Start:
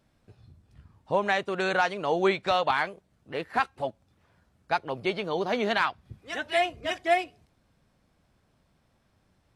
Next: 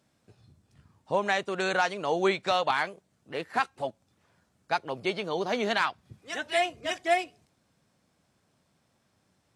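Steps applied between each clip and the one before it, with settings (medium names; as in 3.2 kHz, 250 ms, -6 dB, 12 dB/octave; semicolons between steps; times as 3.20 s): high-pass 110 Hz 12 dB/octave; peaking EQ 7.3 kHz +7 dB 1.2 oct; trim -1.5 dB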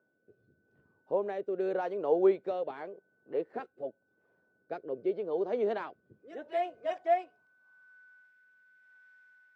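whistle 1.5 kHz -58 dBFS; rotary cabinet horn 0.85 Hz; band-pass sweep 430 Hz -> 1.8 kHz, 6.37–8.30 s; trim +4.5 dB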